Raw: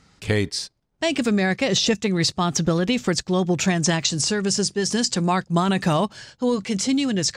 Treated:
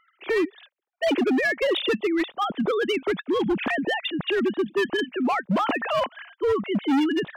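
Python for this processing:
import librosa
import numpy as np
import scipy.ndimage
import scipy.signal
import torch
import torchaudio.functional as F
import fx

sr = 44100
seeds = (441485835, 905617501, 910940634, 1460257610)

y = fx.sine_speech(x, sr)
y = np.clip(10.0 ** (18.5 / 20.0) * y, -1.0, 1.0) / 10.0 ** (18.5 / 20.0)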